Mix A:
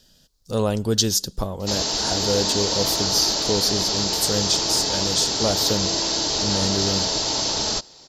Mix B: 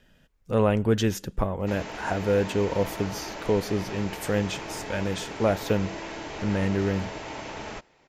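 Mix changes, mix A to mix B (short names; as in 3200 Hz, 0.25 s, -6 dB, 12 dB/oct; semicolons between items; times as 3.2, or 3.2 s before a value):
background -8.5 dB; master: add resonant high shelf 3200 Hz -12.5 dB, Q 3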